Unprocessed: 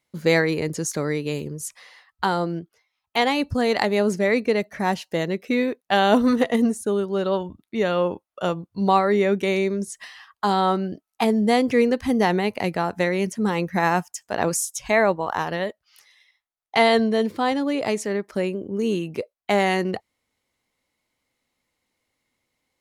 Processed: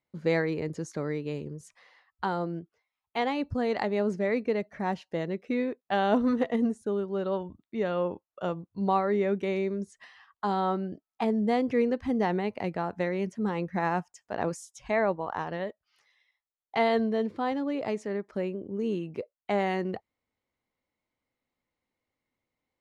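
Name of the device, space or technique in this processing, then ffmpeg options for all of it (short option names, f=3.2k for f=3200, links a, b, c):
through cloth: -af "lowpass=7.7k,highshelf=f=2.8k:g=-11.5,volume=-6.5dB"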